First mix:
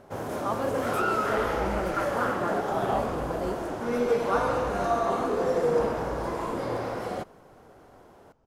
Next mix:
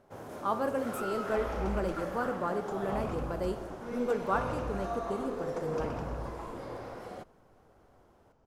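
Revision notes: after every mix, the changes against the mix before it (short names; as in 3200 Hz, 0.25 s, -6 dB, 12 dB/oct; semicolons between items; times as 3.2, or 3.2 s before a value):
first sound -11.0 dB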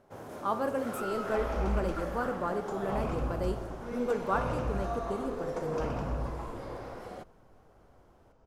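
second sound: send +9.0 dB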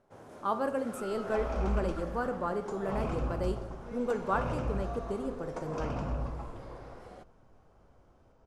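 first sound -6.5 dB; master: add LPF 11000 Hz 24 dB/oct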